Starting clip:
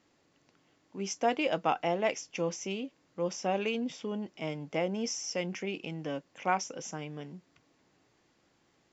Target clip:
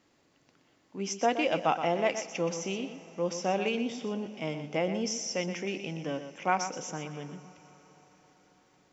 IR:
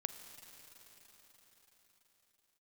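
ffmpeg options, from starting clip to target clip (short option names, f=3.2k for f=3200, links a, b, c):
-filter_complex "[0:a]asplit=2[a][b];[1:a]atrim=start_sample=2205,adelay=122[c];[b][c]afir=irnorm=-1:irlink=0,volume=-8dB[d];[a][d]amix=inputs=2:normalize=0,volume=1.5dB"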